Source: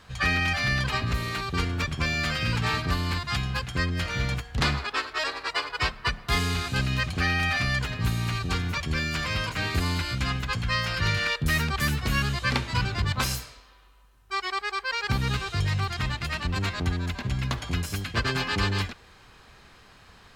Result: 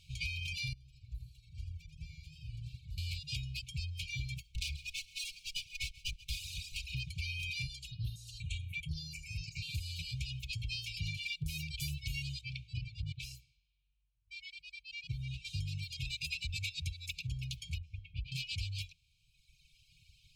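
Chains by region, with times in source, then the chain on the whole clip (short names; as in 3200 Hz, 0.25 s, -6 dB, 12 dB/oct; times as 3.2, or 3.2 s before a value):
0.73–2.98 passive tone stack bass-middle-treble 10-0-1 + warbling echo 84 ms, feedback 62%, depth 113 cents, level -5 dB
4.43–6.95 minimum comb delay 3.7 ms + feedback echo 0.135 s, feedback 33%, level -11 dB
7.67–9.69 LPF 12000 Hz + step phaser 4.1 Hz 400–7700 Hz
12.41–15.45 LPF 1400 Hz 6 dB/oct + low shelf 81 Hz -6.5 dB
16.05–17.27 tilt shelf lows -5 dB, about 650 Hz + comb 0.8 ms, depth 46%
17.78–18.32 LPF 1500 Hz + comb 3.7 ms, depth 67%
whole clip: FFT band-reject 170–2200 Hz; reverb removal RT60 1.6 s; compressor, threshold -29 dBFS; gain -5.5 dB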